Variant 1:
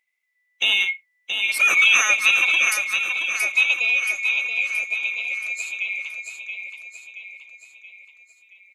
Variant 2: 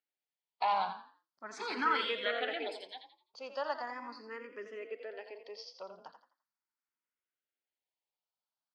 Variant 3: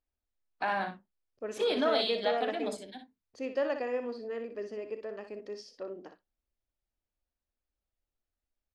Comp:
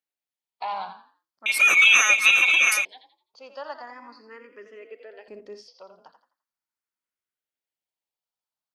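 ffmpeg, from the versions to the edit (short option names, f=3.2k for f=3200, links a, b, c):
-filter_complex "[1:a]asplit=3[a][b][c];[a]atrim=end=1.462[d];[0:a]atrim=start=1.458:end=2.852[e];[b]atrim=start=2.848:end=5.282[f];[2:a]atrim=start=5.278:end=5.682[g];[c]atrim=start=5.678[h];[d][e]acrossfade=d=0.004:c1=hsin:c2=hsin[i];[i][f]acrossfade=d=0.004:c1=hsin:c2=hsin[j];[j][g]acrossfade=d=0.004:c1=hsin:c2=hsin[k];[k][h]acrossfade=d=0.004:c1=hsin:c2=hsin"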